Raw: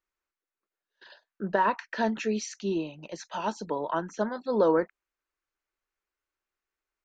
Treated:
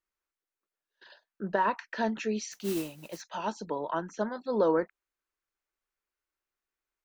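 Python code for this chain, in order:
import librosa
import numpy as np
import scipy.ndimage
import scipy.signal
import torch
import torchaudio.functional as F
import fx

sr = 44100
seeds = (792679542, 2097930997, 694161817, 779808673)

y = fx.mod_noise(x, sr, seeds[0], snr_db=12, at=(2.51, 3.2), fade=0.02)
y = F.gain(torch.from_numpy(y), -2.5).numpy()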